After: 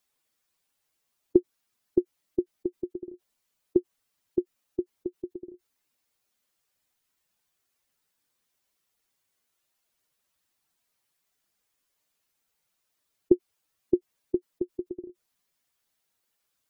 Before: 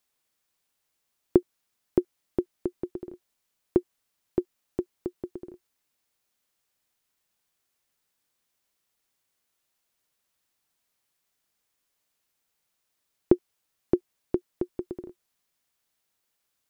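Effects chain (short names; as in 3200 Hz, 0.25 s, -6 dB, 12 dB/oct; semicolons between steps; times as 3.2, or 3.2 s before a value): spectral contrast raised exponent 1.6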